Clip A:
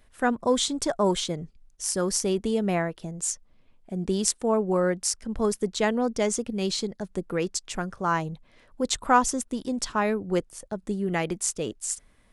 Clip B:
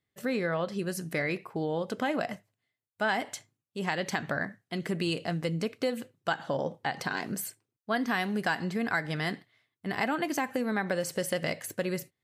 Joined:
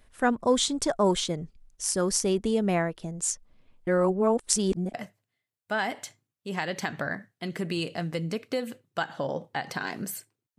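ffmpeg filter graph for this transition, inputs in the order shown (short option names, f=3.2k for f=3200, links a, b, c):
-filter_complex "[0:a]apad=whole_dur=10.58,atrim=end=10.58,asplit=2[a][b];[a]atrim=end=3.872[c];[b]atrim=start=3.868:end=4.942,asetpts=PTS-STARTPTS,areverse[d];[1:a]atrim=start=2.238:end=7.88[e];[c][d]acrossfade=d=0.004:c1=hsin:c2=hsin[f];[f][e]acrossfade=d=0.004:c1=hsin:c2=hsin"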